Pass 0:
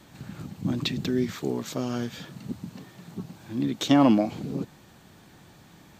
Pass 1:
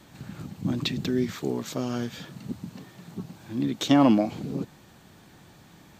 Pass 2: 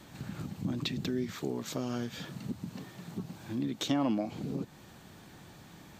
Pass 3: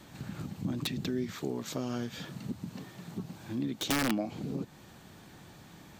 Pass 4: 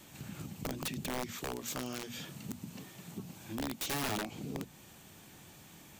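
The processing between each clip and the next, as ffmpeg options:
ffmpeg -i in.wav -af anull out.wav
ffmpeg -i in.wav -af "acompressor=threshold=-35dB:ratio=2" out.wav
ffmpeg -i in.wav -af "aeval=exprs='(mod(12.6*val(0)+1,2)-1)/12.6':channel_layout=same" out.wav
ffmpeg -i in.wav -af "aexciter=amount=1.2:drive=7.9:freq=2300,aeval=exprs='(mod(18.8*val(0)+1,2)-1)/18.8':channel_layout=same,bandreject=frequency=60:width_type=h:width=6,bandreject=frequency=120:width_type=h:width=6,bandreject=frequency=180:width_type=h:width=6,bandreject=frequency=240:width_type=h:width=6,volume=-4dB" out.wav

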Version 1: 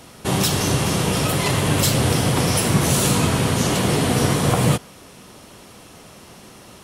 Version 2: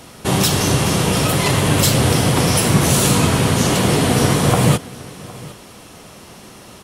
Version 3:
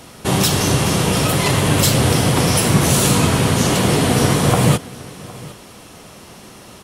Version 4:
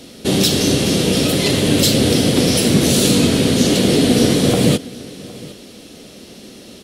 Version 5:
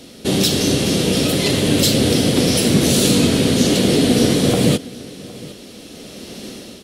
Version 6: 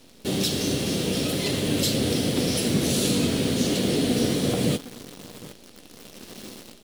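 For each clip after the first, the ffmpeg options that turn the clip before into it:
ffmpeg -i in.wav -af "aecho=1:1:762:0.0944,volume=3.5dB" out.wav
ffmpeg -i in.wav -af anull out.wav
ffmpeg -i in.wav -af "equalizer=frequency=125:width_type=o:width=1:gain=-4,equalizer=frequency=250:width_type=o:width=1:gain=9,equalizer=frequency=500:width_type=o:width=1:gain=6,equalizer=frequency=1000:width_type=o:width=1:gain=-11,equalizer=frequency=4000:width_type=o:width=1:gain=8,volume=-2.5dB" out.wav
ffmpeg -i in.wav -af "dynaudnorm=framelen=590:gausssize=3:maxgain=8.5dB,volume=-1.5dB" out.wav
ffmpeg -i in.wav -af "acrusher=bits=6:dc=4:mix=0:aa=0.000001,volume=-8.5dB" out.wav

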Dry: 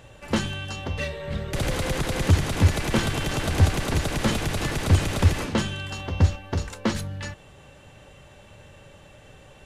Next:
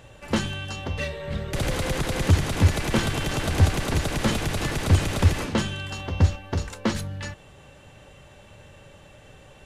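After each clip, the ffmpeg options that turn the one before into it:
ffmpeg -i in.wav -af anull out.wav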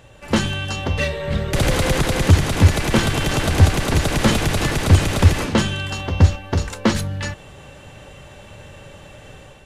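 ffmpeg -i in.wav -af "dynaudnorm=framelen=120:gausssize=5:maxgain=7dB,volume=1dB" out.wav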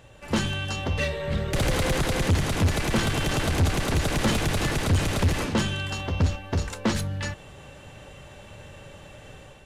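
ffmpeg -i in.wav -af "asoftclip=type=tanh:threshold=-12dB,volume=-4dB" out.wav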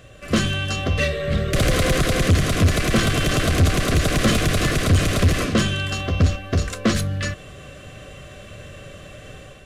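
ffmpeg -i in.wav -af "asuperstop=centerf=880:order=12:qfactor=4.1,volume=5.5dB" out.wav

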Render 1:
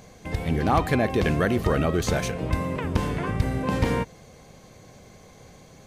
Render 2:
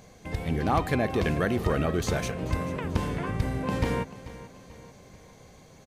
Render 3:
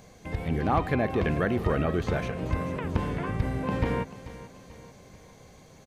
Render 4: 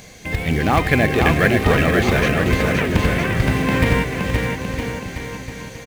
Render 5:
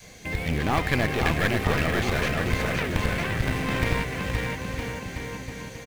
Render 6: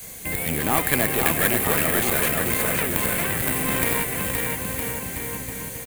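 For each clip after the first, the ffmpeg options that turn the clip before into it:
ffmpeg -i in.wav -af "aecho=1:1:438|876|1314|1752:0.158|0.0745|0.035|0.0165,volume=-3.5dB" out.wav
ffmpeg -i in.wav -filter_complex "[0:a]acrossover=split=3200[link_01][link_02];[link_02]acompressor=threshold=-55dB:ratio=4:attack=1:release=60[link_03];[link_01][link_03]amix=inputs=2:normalize=0" out.wav
ffmpeg -i in.wav -filter_complex "[0:a]highshelf=frequency=1500:width_type=q:width=1.5:gain=6.5,asplit=2[link_01][link_02];[link_02]acrusher=bits=3:mode=log:mix=0:aa=0.000001,volume=-4dB[link_03];[link_01][link_03]amix=inputs=2:normalize=0,aecho=1:1:520|962|1338|1657|1928:0.631|0.398|0.251|0.158|0.1,volume=4dB" out.wav
ffmpeg -i in.wav -af "adynamicequalizer=threshold=0.0316:dfrequency=290:dqfactor=0.71:tfrequency=290:tqfactor=0.71:attack=5:release=100:ratio=0.375:range=2:mode=cutabove:tftype=bell,aeval=exprs='clip(val(0),-1,0.075)':channel_layout=same,volume=-4.5dB" out.wav
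ffmpeg -i in.wav -filter_complex "[0:a]acrossover=split=160[link_01][link_02];[link_01]acompressor=threshold=-36dB:ratio=6[link_03];[link_02]aexciter=amount=11.4:drive=4.5:freq=8000[link_04];[link_03][link_04]amix=inputs=2:normalize=0,acrusher=bits=7:mix=0:aa=0.000001,volume=2dB" out.wav

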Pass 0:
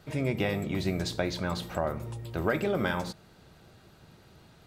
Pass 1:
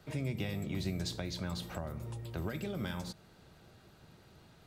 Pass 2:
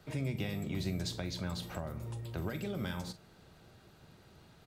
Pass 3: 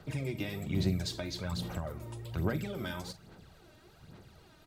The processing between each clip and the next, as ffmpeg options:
ffmpeg -i in.wav -filter_complex "[0:a]acrossover=split=220|3000[link_01][link_02][link_03];[link_02]acompressor=threshold=-38dB:ratio=6[link_04];[link_01][link_04][link_03]amix=inputs=3:normalize=0,volume=-3.5dB" out.wav
ffmpeg -i in.wav -filter_complex "[0:a]asplit=2[link_01][link_02];[link_02]adelay=44,volume=-14dB[link_03];[link_01][link_03]amix=inputs=2:normalize=0" out.wav
ffmpeg -i in.wav -af "aphaser=in_gain=1:out_gain=1:delay=3.3:decay=0.55:speed=1.2:type=sinusoidal" out.wav

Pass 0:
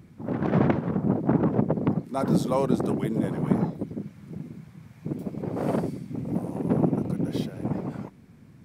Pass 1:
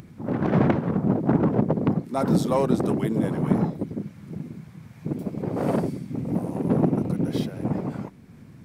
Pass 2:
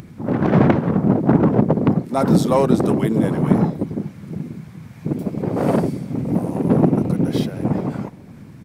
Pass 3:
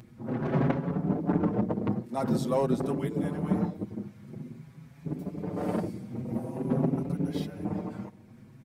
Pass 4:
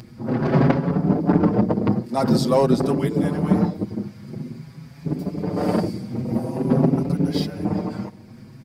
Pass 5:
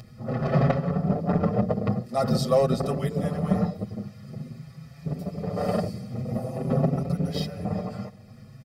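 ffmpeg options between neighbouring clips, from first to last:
ffmpeg -i in.wav -filter_complex "[0:a]asplit=2[link_01][link_02];[link_02]asoftclip=type=hard:threshold=-22dB,volume=-8dB[link_03];[link_01][link_03]amix=inputs=2:normalize=0,acompressor=mode=upward:threshold=-41dB:ratio=2.5" out.wav
ffmpeg -i in.wav -filter_complex "[0:a]asplit=2[link_01][link_02];[link_02]adelay=419.8,volume=-23dB,highshelf=frequency=4000:gain=-9.45[link_03];[link_01][link_03]amix=inputs=2:normalize=0,volume=6dB" out.wav
ffmpeg -i in.wav -filter_complex "[0:a]asplit=2[link_01][link_02];[link_02]adelay=5.9,afreqshift=0.48[link_03];[link_01][link_03]amix=inputs=2:normalize=1,volume=-9dB" out.wav
ffmpeg -i in.wav -af "equalizer=frequency=4800:width=5.1:gain=13,volume=9dB" out.wav
ffmpeg -i in.wav -af "aecho=1:1:1.6:0.78,volume=-5.5dB" out.wav

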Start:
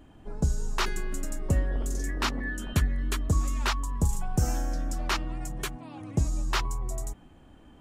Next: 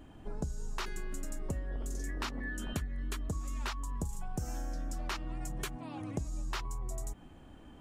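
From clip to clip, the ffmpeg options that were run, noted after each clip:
ffmpeg -i in.wav -af "acompressor=threshold=-34dB:ratio=6" out.wav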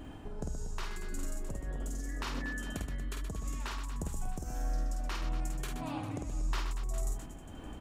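ffmpeg -i in.wav -af "acompressor=threshold=-40dB:ratio=6,tremolo=f=1.7:d=0.43,aecho=1:1:50|125|237.5|406.2|659.4:0.631|0.398|0.251|0.158|0.1,volume=6.5dB" out.wav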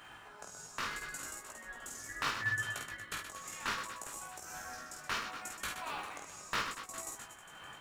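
ffmpeg -i in.wav -filter_complex "[0:a]flanger=delay=17:depth=4.1:speed=0.71,highpass=frequency=1300:width_type=q:width=1.7,asplit=2[link_01][link_02];[link_02]acrusher=samples=27:mix=1:aa=0.000001,volume=-11dB[link_03];[link_01][link_03]amix=inputs=2:normalize=0,volume=6.5dB" out.wav

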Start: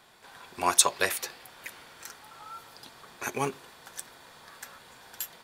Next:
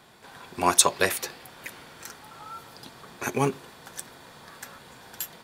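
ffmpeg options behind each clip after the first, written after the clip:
ffmpeg -i in.wav -af "equalizer=frequency=160:width=0.4:gain=7.5,volume=2dB" out.wav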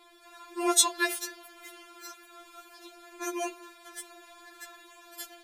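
ffmpeg -i in.wav -af "afftfilt=real='re*4*eq(mod(b,16),0)':imag='im*4*eq(mod(b,16),0)':win_size=2048:overlap=0.75,volume=-1.5dB" out.wav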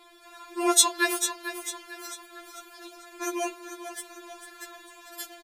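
ffmpeg -i in.wav -af "aecho=1:1:446|892|1338|1784|2230:0.299|0.128|0.0552|0.0237|0.0102,volume=3dB" out.wav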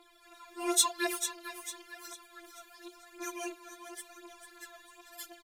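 ffmpeg -i in.wav -af "aphaser=in_gain=1:out_gain=1:delay=4.8:decay=0.58:speed=0.94:type=triangular,volume=-8.5dB" out.wav

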